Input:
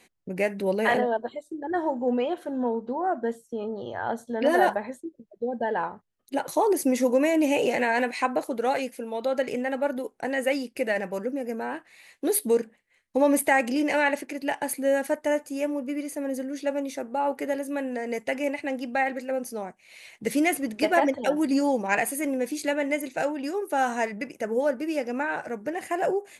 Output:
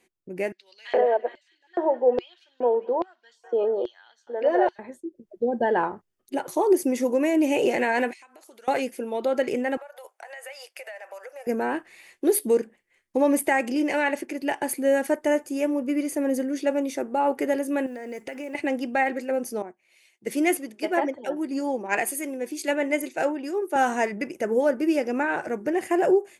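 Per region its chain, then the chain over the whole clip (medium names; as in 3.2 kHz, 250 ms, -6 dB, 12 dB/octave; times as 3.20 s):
0.52–4.79 s: feedback echo behind a high-pass 204 ms, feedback 62%, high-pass 1.8 kHz, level -14.5 dB + LFO high-pass square 1.2 Hz 520–4300 Hz + distance through air 180 m
8.13–8.68 s: band-pass filter 6.2 kHz, Q 0.6 + compression 10:1, threshold -47 dBFS
9.77–11.47 s: elliptic high-pass 610 Hz, stop band 60 dB + compression 10:1, threshold -41 dBFS
17.86–18.55 s: compression 4:1, threshold -38 dBFS + peaking EQ 1.4 kHz +3 dB 0.38 oct + modulation noise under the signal 32 dB
19.62–23.76 s: high-pass 230 Hz 6 dB/octave + three bands expanded up and down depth 70%
whole clip: peaking EQ 360 Hz +10 dB 0.3 oct; band-stop 4 kHz, Q 12; level rider gain up to 14 dB; trim -9 dB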